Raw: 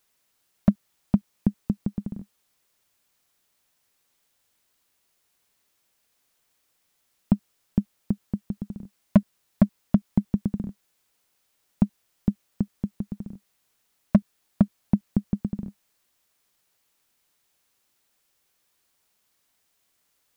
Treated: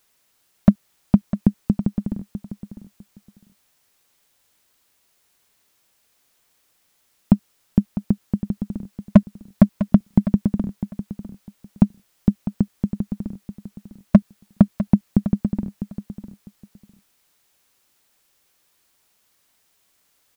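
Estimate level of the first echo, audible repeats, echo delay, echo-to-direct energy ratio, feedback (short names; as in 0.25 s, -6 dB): -12.0 dB, 2, 0.652 s, -12.0 dB, 19%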